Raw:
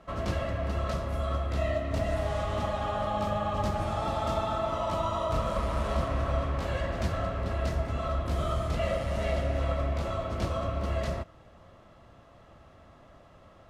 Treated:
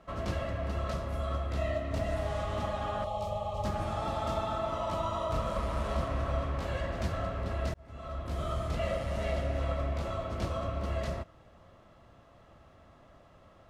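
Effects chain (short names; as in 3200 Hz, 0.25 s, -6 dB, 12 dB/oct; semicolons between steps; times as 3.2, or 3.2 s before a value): 3.04–3.65 fixed phaser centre 650 Hz, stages 4; 7.74–8.84 fade in equal-power; gain -3 dB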